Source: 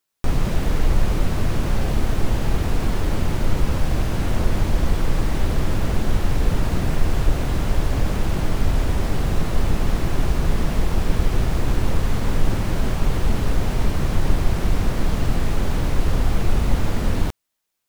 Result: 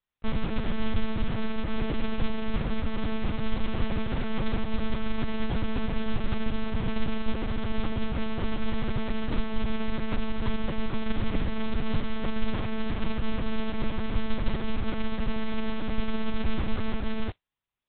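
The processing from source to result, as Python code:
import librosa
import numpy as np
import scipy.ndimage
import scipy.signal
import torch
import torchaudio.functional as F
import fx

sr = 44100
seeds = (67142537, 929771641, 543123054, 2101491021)

y = fx.mod_noise(x, sr, seeds[0], snr_db=15)
y = fx.lpc_monotone(y, sr, seeds[1], pitch_hz=220.0, order=8)
y = F.gain(torch.from_numpy(y), -7.0).numpy()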